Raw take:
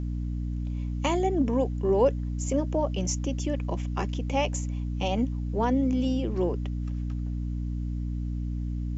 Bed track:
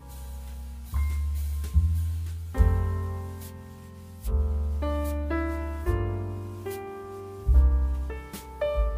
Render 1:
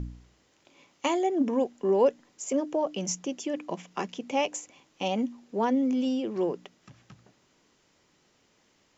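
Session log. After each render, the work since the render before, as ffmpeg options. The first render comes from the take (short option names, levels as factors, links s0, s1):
-af "bandreject=f=60:t=h:w=4,bandreject=f=120:t=h:w=4,bandreject=f=180:t=h:w=4,bandreject=f=240:t=h:w=4,bandreject=f=300:t=h:w=4"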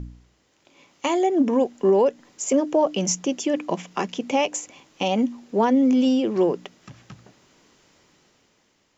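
-af "alimiter=limit=0.112:level=0:latency=1:release=217,dynaudnorm=f=140:g=13:m=2.66"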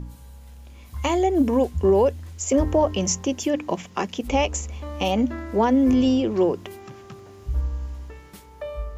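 -filter_complex "[1:a]volume=0.531[s0];[0:a][s0]amix=inputs=2:normalize=0"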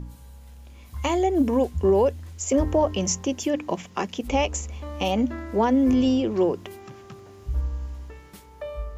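-af "volume=0.841"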